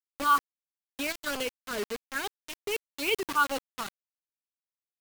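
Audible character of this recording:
phaser sweep stages 6, 2.3 Hz, lowest notch 510–1,600 Hz
a quantiser's noise floor 6 bits, dither none
tremolo saw up 4.2 Hz, depth 35%

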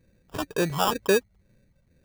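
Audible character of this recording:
phaser sweep stages 12, 2.1 Hz, lowest notch 340–3,200 Hz
aliases and images of a low sample rate 2,100 Hz, jitter 0%

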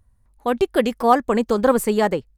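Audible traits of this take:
background noise floor −60 dBFS
spectral slope −4.5 dB per octave

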